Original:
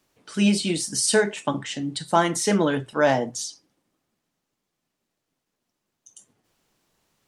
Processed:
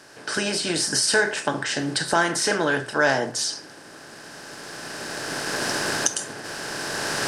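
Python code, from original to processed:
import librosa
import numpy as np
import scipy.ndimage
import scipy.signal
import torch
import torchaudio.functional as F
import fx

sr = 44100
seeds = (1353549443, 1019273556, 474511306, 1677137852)

y = fx.bin_compress(x, sr, power=0.6)
y = fx.recorder_agc(y, sr, target_db=-9.0, rise_db_per_s=12.0, max_gain_db=30)
y = fx.graphic_eq_31(y, sr, hz=(200, 1600, 5000), db=(-10, 11, 7))
y = F.gain(torch.from_numpy(y), -4.5).numpy()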